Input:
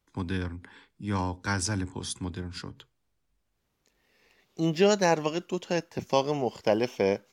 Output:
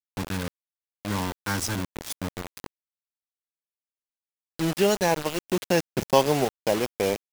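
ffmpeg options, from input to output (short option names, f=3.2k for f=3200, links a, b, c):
-filter_complex "[0:a]asettb=1/sr,asplit=3[a][b][c];[a]atrim=end=5.454[d];[b]atrim=start=5.45:end=6.45,asetpts=PTS-STARTPTS,afade=t=in:d=0.004:c=qsin,afade=t=out:st=0.996:d=0.004:c=qsin,acontrast=48[e];[c]atrim=start=6.446[f];[d][e]acrossfade=d=0.004:c1=hsin:c2=qsin[g];[g][f]acrossfade=d=0.004:c1=qsin:c2=hsin,acrusher=bits=4:mix=0:aa=0.000001"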